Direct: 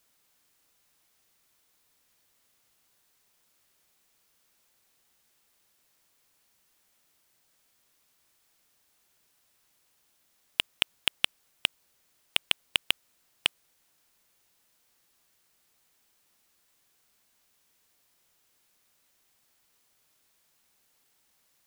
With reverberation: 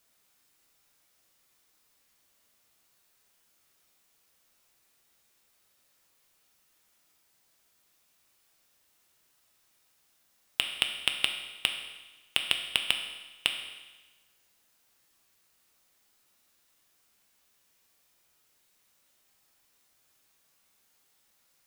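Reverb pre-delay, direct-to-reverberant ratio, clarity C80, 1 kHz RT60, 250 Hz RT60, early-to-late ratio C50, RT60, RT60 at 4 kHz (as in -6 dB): 6 ms, 4.0 dB, 8.5 dB, 1.2 s, 1.2 s, 7.0 dB, 1.2 s, 1.2 s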